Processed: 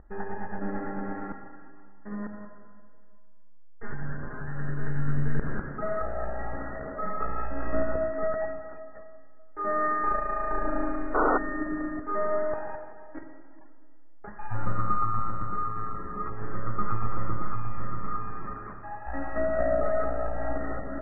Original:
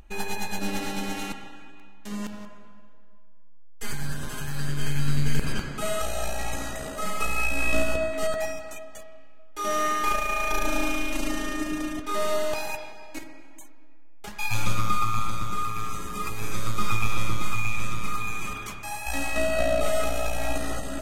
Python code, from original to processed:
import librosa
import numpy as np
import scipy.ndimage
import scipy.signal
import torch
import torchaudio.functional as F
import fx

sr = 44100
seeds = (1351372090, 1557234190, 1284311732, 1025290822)

y = fx.spec_paint(x, sr, seeds[0], shape='noise', start_s=11.14, length_s=0.24, low_hz=260.0, high_hz=1500.0, level_db=-22.0)
y = scipy.signal.sosfilt(scipy.signal.cheby1(6, 3, 1900.0, 'lowpass', fs=sr, output='sos'), y)